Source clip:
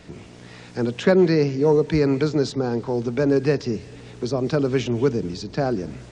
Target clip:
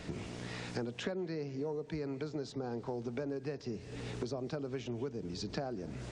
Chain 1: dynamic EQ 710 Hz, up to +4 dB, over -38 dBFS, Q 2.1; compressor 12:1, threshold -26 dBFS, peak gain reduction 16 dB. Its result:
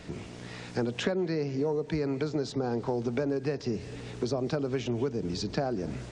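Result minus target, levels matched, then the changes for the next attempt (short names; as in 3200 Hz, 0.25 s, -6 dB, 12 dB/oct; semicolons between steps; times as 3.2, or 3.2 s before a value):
compressor: peak gain reduction -8.5 dB
change: compressor 12:1, threshold -35.5 dBFS, peak gain reduction 24.5 dB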